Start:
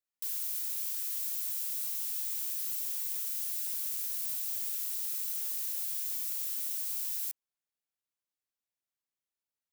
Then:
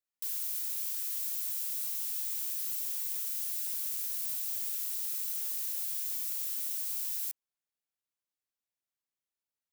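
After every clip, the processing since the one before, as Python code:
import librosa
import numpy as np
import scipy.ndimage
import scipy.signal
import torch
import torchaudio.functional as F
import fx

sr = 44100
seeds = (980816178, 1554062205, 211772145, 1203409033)

y = x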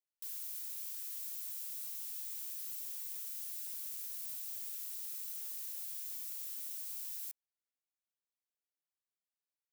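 y = scipy.signal.sosfilt(scipy.signal.butter(2, 280.0, 'highpass', fs=sr, output='sos'), x)
y = F.gain(torch.from_numpy(y), -8.0).numpy()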